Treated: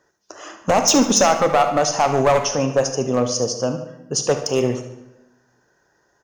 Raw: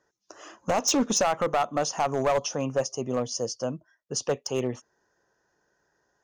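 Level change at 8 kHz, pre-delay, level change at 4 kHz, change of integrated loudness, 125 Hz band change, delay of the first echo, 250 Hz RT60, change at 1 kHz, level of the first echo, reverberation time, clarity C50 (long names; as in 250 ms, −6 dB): +9.0 dB, 24 ms, +9.0 dB, +9.0 dB, +9.5 dB, 73 ms, 1.1 s, +9.0 dB, −12.5 dB, 1.0 s, 8.0 dB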